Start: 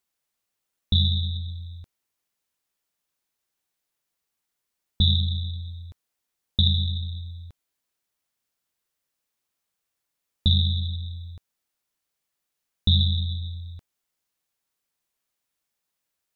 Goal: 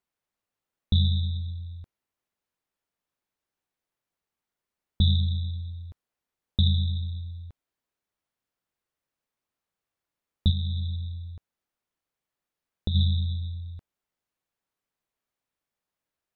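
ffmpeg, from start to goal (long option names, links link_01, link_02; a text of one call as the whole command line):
ffmpeg -i in.wav -filter_complex "[0:a]highshelf=frequency=2900:gain=-12,asplit=3[link_01][link_02][link_03];[link_01]afade=type=out:start_time=10.5:duration=0.02[link_04];[link_02]acompressor=threshold=-25dB:ratio=6,afade=type=in:start_time=10.5:duration=0.02,afade=type=out:start_time=12.94:duration=0.02[link_05];[link_03]afade=type=in:start_time=12.94:duration=0.02[link_06];[link_04][link_05][link_06]amix=inputs=3:normalize=0" out.wav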